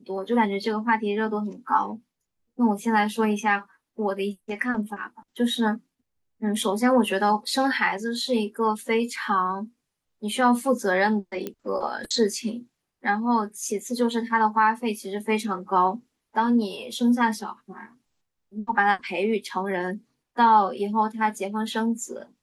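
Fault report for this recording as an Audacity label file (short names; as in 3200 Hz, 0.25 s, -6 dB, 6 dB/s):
11.470000	11.470000	pop -17 dBFS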